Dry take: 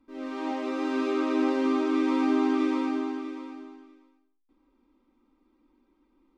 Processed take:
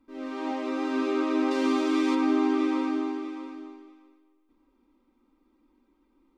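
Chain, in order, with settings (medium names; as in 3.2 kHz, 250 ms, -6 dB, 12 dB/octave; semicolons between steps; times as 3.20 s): 1.51–2.15 s: treble shelf 3.1 kHz +10 dB; feedback echo behind a low-pass 253 ms, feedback 38%, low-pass 3.4 kHz, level -14 dB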